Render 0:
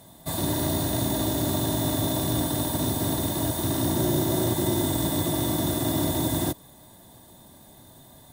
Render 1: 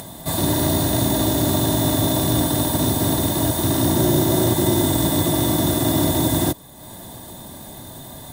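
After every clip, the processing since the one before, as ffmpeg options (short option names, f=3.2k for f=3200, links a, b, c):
-af "acompressor=mode=upward:threshold=-35dB:ratio=2.5,volume=6.5dB"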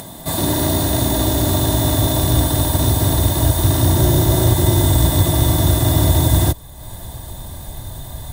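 -af "asubboost=boost=10.5:cutoff=71,volume=2dB"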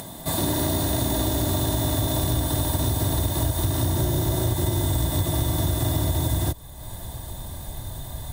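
-af "acompressor=threshold=-16dB:ratio=6,volume=-3.5dB"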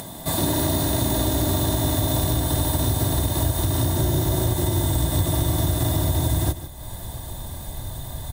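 -af "aecho=1:1:152:0.224,volume=1.5dB"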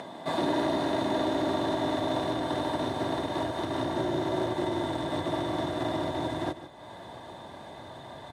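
-af "highpass=310,lowpass=2.5k"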